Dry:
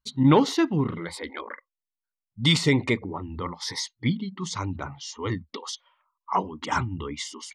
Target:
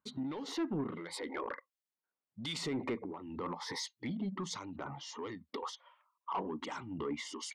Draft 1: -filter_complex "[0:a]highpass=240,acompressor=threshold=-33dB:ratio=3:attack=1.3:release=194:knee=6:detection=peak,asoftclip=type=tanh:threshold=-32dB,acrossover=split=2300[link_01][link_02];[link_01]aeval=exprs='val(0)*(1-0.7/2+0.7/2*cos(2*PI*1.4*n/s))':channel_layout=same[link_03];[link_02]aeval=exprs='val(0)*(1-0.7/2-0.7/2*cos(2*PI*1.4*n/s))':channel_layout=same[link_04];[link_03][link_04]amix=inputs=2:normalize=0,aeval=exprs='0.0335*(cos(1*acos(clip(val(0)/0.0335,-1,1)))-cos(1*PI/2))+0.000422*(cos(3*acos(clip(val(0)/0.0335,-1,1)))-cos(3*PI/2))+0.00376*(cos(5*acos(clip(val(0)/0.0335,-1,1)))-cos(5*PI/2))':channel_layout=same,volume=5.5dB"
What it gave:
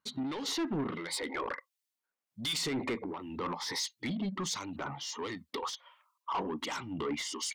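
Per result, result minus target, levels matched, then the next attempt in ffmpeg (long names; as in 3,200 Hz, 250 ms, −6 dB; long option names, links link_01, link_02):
downward compressor: peak gain reduction −4.5 dB; 4,000 Hz band +3.0 dB
-filter_complex "[0:a]highpass=240,acompressor=threshold=-41dB:ratio=3:attack=1.3:release=194:knee=6:detection=peak,asoftclip=type=tanh:threshold=-32dB,acrossover=split=2300[link_01][link_02];[link_01]aeval=exprs='val(0)*(1-0.7/2+0.7/2*cos(2*PI*1.4*n/s))':channel_layout=same[link_03];[link_02]aeval=exprs='val(0)*(1-0.7/2-0.7/2*cos(2*PI*1.4*n/s))':channel_layout=same[link_04];[link_03][link_04]amix=inputs=2:normalize=0,aeval=exprs='0.0335*(cos(1*acos(clip(val(0)/0.0335,-1,1)))-cos(1*PI/2))+0.000422*(cos(3*acos(clip(val(0)/0.0335,-1,1)))-cos(3*PI/2))+0.00376*(cos(5*acos(clip(val(0)/0.0335,-1,1)))-cos(5*PI/2))':channel_layout=same,volume=5.5dB"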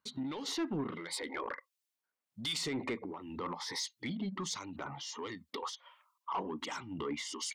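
4,000 Hz band +3.0 dB
-filter_complex "[0:a]highpass=240,highshelf=frequency=2000:gain=-11.5,acompressor=threshold=-41dB:ratio=3:attack=1.3:release=194:knee=6:detection=peak,asoftclip=type=tanh:threshold=-32dB,acrossover=split=2300[link_01][link_02];[link_01]aeval=exprs='val(0)*(1-0.7/2+0.7/2*cos(2*PI*1.4*n/s))':channel_layout=same[link_03];[link_02]aeval=exprs='val(0)*(1-0.7/2-0.7/2*cos(2*PI*1.4*n/s))':channel_layout=same[link_04];[link_03][link_04]amix=inputs=2:normalize=0,aeval=exprs='0.0335*(cos(1*acos(clip(val(0)/0.0335,-1,1)))-cos(1*PI/2))+0.000422*(cos(3*acos(clip(val(0)/0.0335,-1,1)))-cos(3*PI/2))+0.00376*(cos(5*acos(clip(val(0)/0.0335,-1,1)))-cos(5*PI/2))':channel_layout=same,volume=5.5dB"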